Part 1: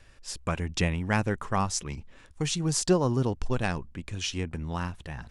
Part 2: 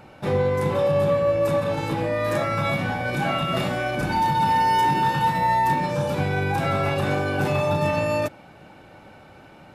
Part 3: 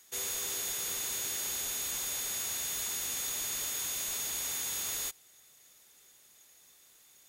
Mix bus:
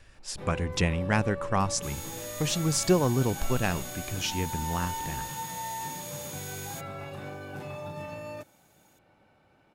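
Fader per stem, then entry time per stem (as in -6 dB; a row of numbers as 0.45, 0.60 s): +0.5, -16.5, -6.5 dB; 0.00, 0.15, 1.70 s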